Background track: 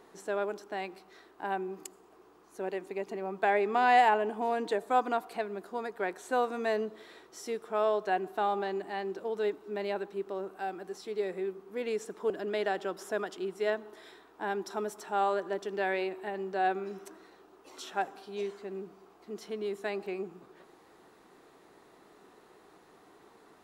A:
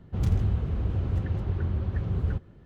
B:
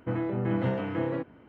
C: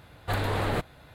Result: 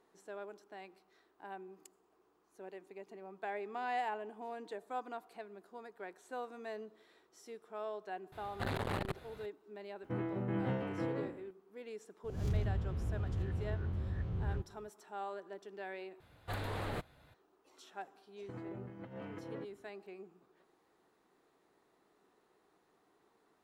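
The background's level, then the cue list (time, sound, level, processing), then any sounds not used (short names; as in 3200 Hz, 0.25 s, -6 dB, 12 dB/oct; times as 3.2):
background track -14 dB
8.32 add C -4 dB + core saturation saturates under 580 Hz
10.03 add B -9 dB + spectral trails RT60 0.56 s
12.24 add A -11 dB + spectral swells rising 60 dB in 0.53 s
16.2 replace with C -11.5 dB
18.42 add B -15.5 dB + negative-ratio compressor -30 dBFS, ratio -0.5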